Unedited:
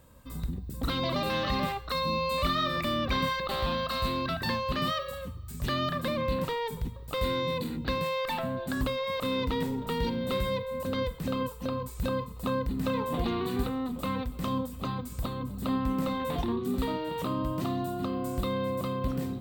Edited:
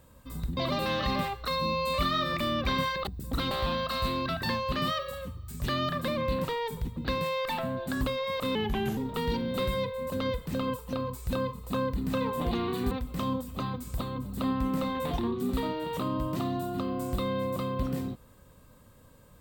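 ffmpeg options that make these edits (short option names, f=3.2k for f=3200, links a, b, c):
-filter_complex "[0:a]asplit=8[a][b][c][d][e][f][g][h];[a]atrim=end=0.572[i];[b]atrim=start=1.008:end=3.512[j];[c]atrim=start=0.568:end=1.012[k];[d]atrim=start=3.508:end=6.972[l];[e]atrim=start=7.768:end=9.354[m];[f]atrim=start=9.35:end=9.7,asetpts=PTS-STARTPTS,asetrate=36603,aresample=44100,atrim=end_sample=18596,asetpts=PTS-STARTPTS[n];[g]atrim=start=9.696:end=13.642[o];[h]atrim=start=14.158[p];[i][j]acrossfade=d=0.004:c1=hsin:c2=hsin[q];[q][k]acrossfade=d=0.004:c1=hsin:c2=hsin[r];[r][l]acrossfade=d=0.004:c1=hsin:c2=hsin[s];[s][m]acrossfade=d=0.004:c1=hsin:c2=hsin[t];[t][n]acrossfade=d=0.004:c1=hsin:c2=hsin[u];[u][o]acrossfade=d=0.004:c1=hsin:c2=hsin[v];[v][p]acrossfade=d=0.004:c1=hsin:c2=hsin"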